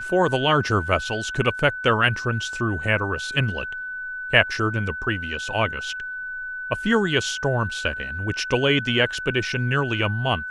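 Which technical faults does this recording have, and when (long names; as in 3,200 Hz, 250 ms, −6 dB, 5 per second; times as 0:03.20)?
whistle 1,500 Hz −29 dBFS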